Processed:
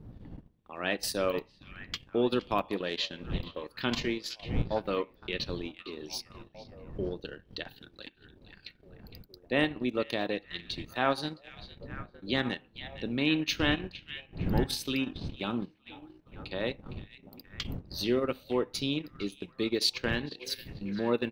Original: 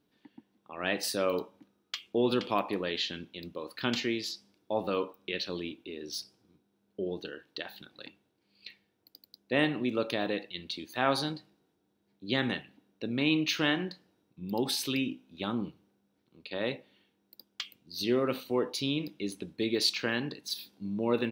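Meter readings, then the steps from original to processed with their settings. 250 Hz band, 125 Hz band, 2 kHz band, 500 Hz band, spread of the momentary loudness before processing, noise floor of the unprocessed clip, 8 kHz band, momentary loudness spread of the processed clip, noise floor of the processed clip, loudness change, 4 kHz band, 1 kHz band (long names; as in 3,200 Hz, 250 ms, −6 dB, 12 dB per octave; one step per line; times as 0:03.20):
−0.5 dB, +3.5 dB, 0.0 dB, 0.0 dB, 16 LU, −76 dBFS, −1.5 dB, 21 LU, −62 dBFS, −0.5 dB, −0.5 dB, 0.0 dB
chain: wind on the microphone 170 Hz −42 dBFS
echo through a band-pass that steps 460 ms, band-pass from 2,700 Hz, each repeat −0.7 octaves, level −9 dB
transient designer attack 0 dB, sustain −12 dB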